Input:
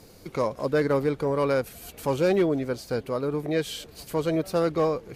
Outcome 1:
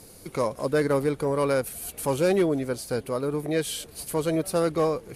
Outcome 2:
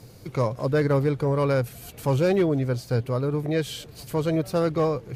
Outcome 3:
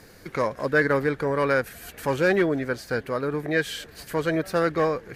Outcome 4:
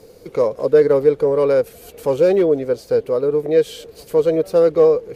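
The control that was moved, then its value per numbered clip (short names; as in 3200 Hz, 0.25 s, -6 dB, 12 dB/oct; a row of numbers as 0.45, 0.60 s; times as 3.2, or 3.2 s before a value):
bell, frequency: 10000, 120, 1700, 470 Hz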